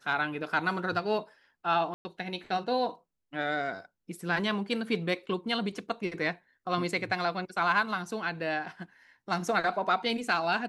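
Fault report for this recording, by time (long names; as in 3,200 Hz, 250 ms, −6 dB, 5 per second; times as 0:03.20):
0:01.94–0:02.05: drop-out 110 ms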